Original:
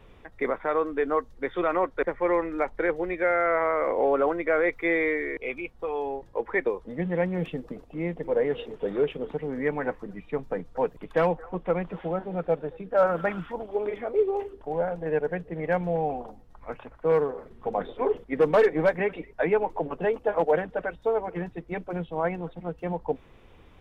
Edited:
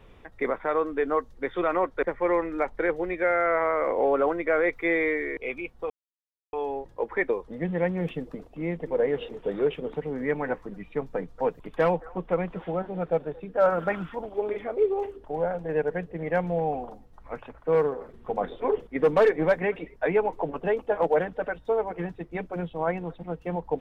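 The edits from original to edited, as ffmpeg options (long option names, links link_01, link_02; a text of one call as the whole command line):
ffmpeg -i in.wav -filter_complex "[0:a]asplit=2[link_01][link_02];[link_01]atrim=end=5.9,asetpts=PTS-STARTPTS,afade=type=out:start_time=5.896:duration=0.004:curve=hsin,apad=pad_dur=0.63[link_03];[link_02]atrim=start=5.9,asetpts=PTS-STARTPTS,afade=type=in:duration=0.004:curve=hsin[link_04];[link_03][link_04]concat=n=2:v=0:a=1" out.wav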